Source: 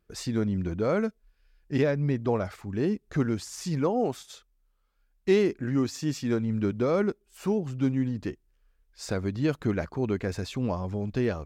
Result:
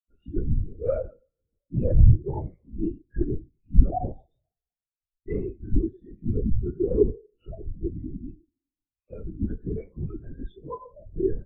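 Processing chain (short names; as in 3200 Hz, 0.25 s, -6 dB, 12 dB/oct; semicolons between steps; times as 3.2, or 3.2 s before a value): moving spectral ripple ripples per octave 0.92, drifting +1.1 Hz, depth 18 dB; expander -46 dBFS; upward compressor, threshold -32 dBFS; soft clip -19.5 dBFS, distortion -13 dB; 10.51–11.06 band-pass 600 Hz, Q 0.57; reverb, pre-delay 3 ms, DRR -1.5 dB; LPC vocoder at 8 kHz whisper; spectral expander 2.5:1; gain +7 dB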